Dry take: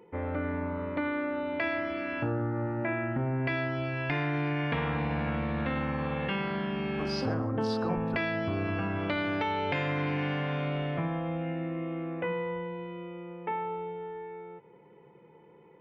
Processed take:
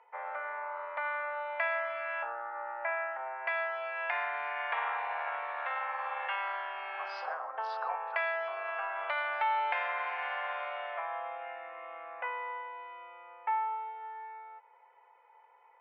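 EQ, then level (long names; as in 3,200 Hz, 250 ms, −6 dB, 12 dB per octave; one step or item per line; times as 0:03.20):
Butterworth high-pass 700 Hz 36 dB per octave
low-pass filter 1,900 Hz 12 dB per octave
+3.5 dB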